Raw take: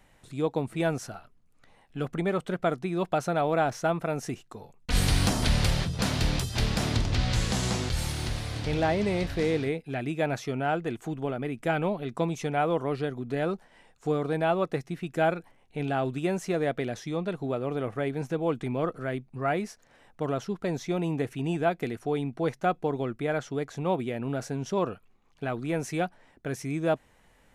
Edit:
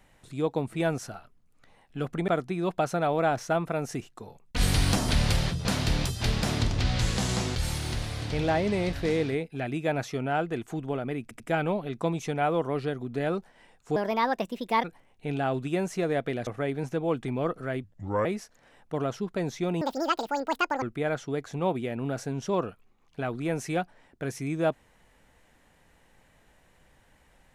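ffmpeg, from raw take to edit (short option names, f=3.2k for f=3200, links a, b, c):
-filter_complex "[0:a]asplit=11[a][b][c][d][e][f][g][h][i][j][k];[a]atrim=end=2.282[l];[b]atrim=start=2.618:end=11.652[m];[c]atrim=start=11.558:end=11.652[n];[d]atrim=start=11.558:end=14.124[o];[e]atrim=start=14.12:end=15.35,asetpts=PTS-STARTPTS,asetrate=61740,aresample=44100[p];[f]atrim=start=15.346:end=16.982[q];[g]atrim=start=17.848:end=19.224[r];[h]atrim=start=19.22:end=19.53,asetpts=PTS-STARTPTS,asetrate=33075,aresample=44100[s];[i]atrim=start=19.526:end=21.094[t];[j]atrim=start=21.09:end=23.06,asetpts=PTS-STARTPTS,asetrate=85995,aresample=44100,atrim=end_sample=44552,asetpts=PTS-STARTPTS[u];[k]atrim=start=23.056[v];[l][m]acrossfade=d=0.004:c1=hsin:c2=hsin[w];[w][n]acrossfade=d=0.004:c1=hsin:c2=hsin[x];[x][o]acrossfade=d=0.004:c1=hsin:c2=hsin[y];[y][p]acrossfade=d=0.004:c1=hsin:c2=hsin[z];[z][q]acrossfade=d=0.004:c1=hsin:c2=hsin[aa];[aa][r]acrossfade=d=0.004:c1=hsin:c2=hsin[ab];[ab][s]acrossfade=d=0.004:c1=hsin:c2=hsin[ac];[ac][t]acrossfade=d=0.004:c1=hsin:c2=hsin[ad];[ad][u]acrossfade=d=0.004:c1=hsin:c2=hsin[ae];[ae][v]acrossfade=d=0.004:c1=hsin:c2=hsin"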